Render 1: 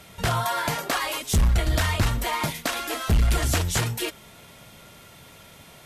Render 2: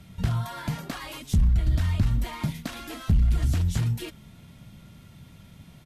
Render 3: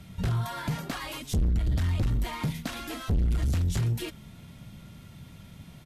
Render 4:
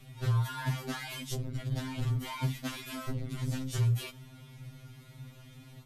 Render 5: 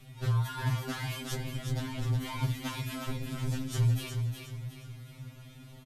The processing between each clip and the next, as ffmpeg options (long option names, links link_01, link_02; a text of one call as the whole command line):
ffmpeg -i in.wav -af "acompressor=threshold=-23dB:ratio=6,firequalizer=gain_entry='entry(190,0);entry(430,-16);entry(3800,-14);entry(7400,-17)':delay=0.05:min_phase=1,volume=5.5dB" out.wav
ffmpeg -i in.wav -af "asoftclip=type=tanh:threshold=-23dB,volume=1.5dB" out.wav
ffmpeg -i in.wav -af "afftfilt=real='re*2.45*eq(mod(b,6),0)':imag='im*2.45*eq(mod(b,6),0)':win_size=2048:overlap=0.75" out.wav
ffmpeg -i in.wav -af "aecho=1:1:363|726|1089|1452|1815:0.501|0.195|0.0762|0.0297|0.0116" out.wav